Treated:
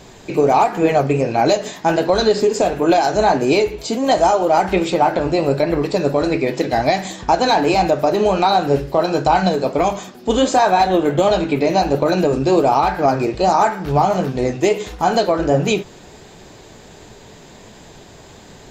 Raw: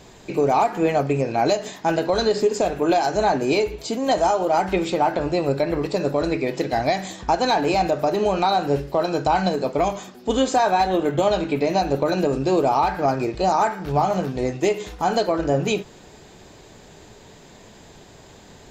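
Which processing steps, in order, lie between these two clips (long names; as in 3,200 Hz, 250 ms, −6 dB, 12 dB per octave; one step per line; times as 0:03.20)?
flanger 1.4 Hz, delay 4.9 ms, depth 9.4 ms, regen −67%
level +9 dB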